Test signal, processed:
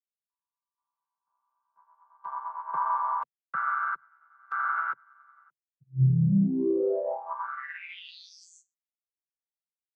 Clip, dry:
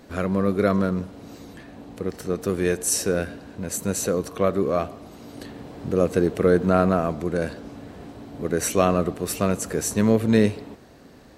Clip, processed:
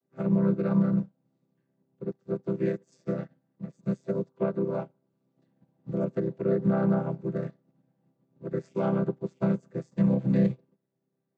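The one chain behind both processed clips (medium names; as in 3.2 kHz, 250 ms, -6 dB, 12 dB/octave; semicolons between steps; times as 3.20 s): vocoder on a held chord major triad, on C3; peak limiter -17 dBFS; upward expansion 2.5:1, over -43 dBFS; trim +2.5 dB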